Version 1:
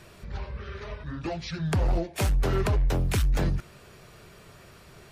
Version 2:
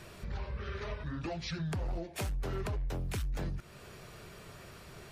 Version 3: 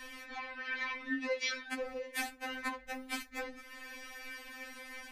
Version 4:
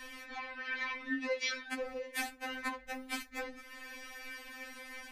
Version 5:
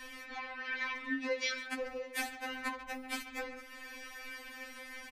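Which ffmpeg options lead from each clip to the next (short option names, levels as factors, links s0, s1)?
-af "alimiter=level_in=1.33:limit=0.0631:level=0:latency=1:release=293,volume=0.75,acompressor=threshold=0.02:ratio=3"
-af "equalizer=f=2000:w=1.9:g=11,afftfilt=real='re*3.46*eq(mod(b,12),0)':imag='im*3.46*eq(mod(b,12),0)':win_size=2048:overlap=0.75,volume=1.5"
-af anull
-filter_complex "[0:a]asplit=2[s0][s1];[s1]adelay=140,highpass=300,lowpass=3400,asoftclip=type=hard:threshold=0.0237,volume=0.316[s2];[s0][s2]amix=inputs=2:normalize=0"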